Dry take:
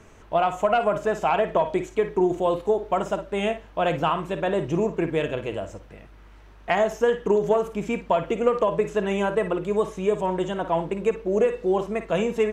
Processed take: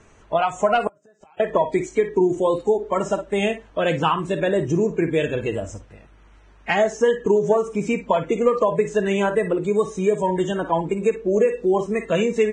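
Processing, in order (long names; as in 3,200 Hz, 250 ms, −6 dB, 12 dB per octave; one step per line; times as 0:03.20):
noise reduction from a noise print of the clip's start 10 dB
in parallel at +3 dB: downward compressor 6 to 1, threshold −29 dBFS, peak gain reduction 13.5 dB
0:00.87–0:01.40: on the sum: gate with flip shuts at −18 dBFS, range −35 dB
Ogg Vorbis 16 kbit/s 22,050 Hz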